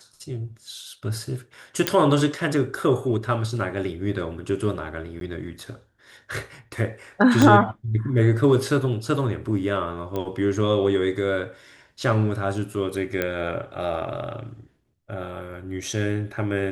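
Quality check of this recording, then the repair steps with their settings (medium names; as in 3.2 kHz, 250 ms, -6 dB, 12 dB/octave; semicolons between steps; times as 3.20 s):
1.87 s: pop -3 dBFS
5.20–5.21 s: dropout 12 ms
7.42 s: pop -5 dBFS
10.16 s: pop -16 dBFS
13.22 s: pop -11 dBFS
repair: de-click; interpolate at 5.20 s, 12 ms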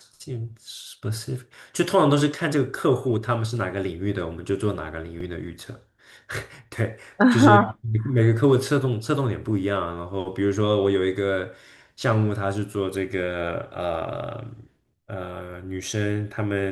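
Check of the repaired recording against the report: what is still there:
7.42 s: pop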